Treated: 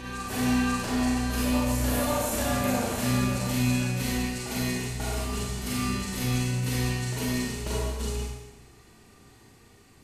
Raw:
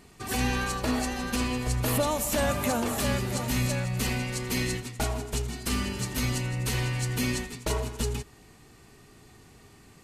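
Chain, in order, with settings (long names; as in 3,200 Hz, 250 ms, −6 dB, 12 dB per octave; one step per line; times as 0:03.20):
backwards echo 540 ms −5 dB
four-comb reverb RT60 1 s, combs from 32 ms, DRR −5 dB
level −7.5 dB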